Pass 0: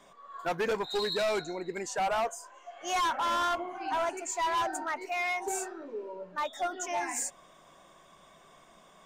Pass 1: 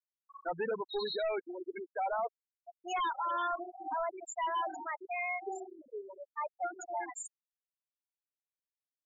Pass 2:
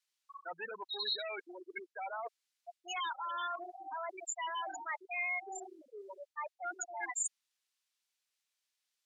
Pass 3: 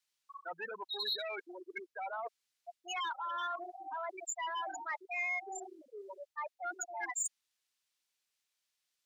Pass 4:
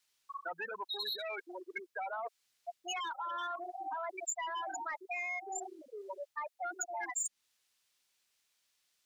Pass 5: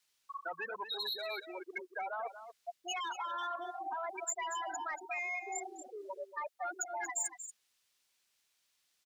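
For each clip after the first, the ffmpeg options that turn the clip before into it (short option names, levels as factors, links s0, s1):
-af "afftfilt=real='re*gte(hypot(re,im),0.0708)':imag='im*gte(hypot(re,im),0.0708)':win_size=1024:overlap=0.75,volume=0.631"
-af "areverse,acompressor=threshold=0.00631:ratio=6,areverse,bandpass=f=4100:t=q:w=0.68:csg=0,volume=5.62"
-af "asoftclip=type=tanh:threshold=0.0447,volume=1.12"
-filter_complex "[0:a]acrossover=split=540|7900[s0][s1][s2];[s0]acompressor=threshold=0.00126:ratio=4[s3];[s1]acompressor=threshold=0.00501:ratio=4[s4];[s2]acompressor=threshold=0.00398:ratio=4[s5];[s3][s4][s5]amix=inputs=3:normalize=0,volume=2.24"
-af "aecho=1:1:234:0.282"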